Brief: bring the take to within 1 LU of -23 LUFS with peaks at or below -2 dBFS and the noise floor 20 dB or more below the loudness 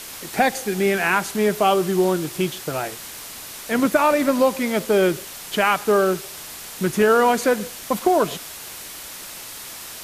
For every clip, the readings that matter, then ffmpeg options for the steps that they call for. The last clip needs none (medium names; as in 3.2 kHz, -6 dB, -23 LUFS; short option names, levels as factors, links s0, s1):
noise floor -37 dBFS; noise floor target -41 dBFS; loudness -20.5 LUFS; peak level -4.5 dBFS; loudness target -23.0 LUFS
-> -af "afftdn=nr=6:nf=-37"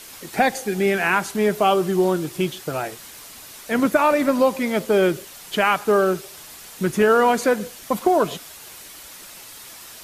noise floor -41 dBFS; loudness -20.5 LUFS; peak level -5.0 dBFS; loudness target -23.0 LUFS
-> -af "volume=0.75"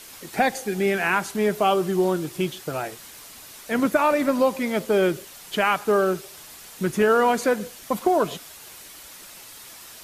loudness -23.0 LUFS; peak level -7.5 dBFS; noise floor -44 dBFS